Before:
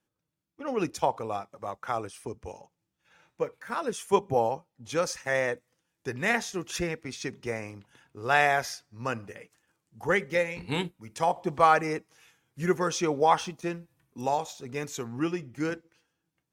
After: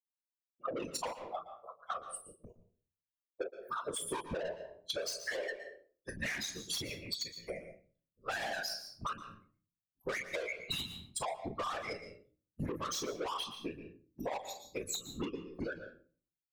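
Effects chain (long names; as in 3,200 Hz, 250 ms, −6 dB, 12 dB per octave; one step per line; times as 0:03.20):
spectral dynamics exaggerated over time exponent 3
graphic EQ with 15 bands 630 Hz −6 dB, 4,000 Hz +12 dB, 10,000 Hz +5 dB
noise gate −57 dBFS, range −9 dB
high-pass filter 150 Hz 24 dB per octave
parametric band 880 Hz +9.5 dB 1.9 octaves
comb filter 1.8 ms, depth 96%
ambience of single reflections 27 ms −11 dB, 41 ms −14.5 dB
brickwall limiter −21 dBFS, peak gain reduction 19 dB
soft clipping −35.5 dBFS, distortion −6 dB
random phases in short frames
on a send at −14 dB: convolution reverb RT60 0.40 s, pre-delay 114 ms
on the sum: downward compressor 6 to 1, threshold −51 dBFS, peak gain reduction 17 dB
level +14.5 dB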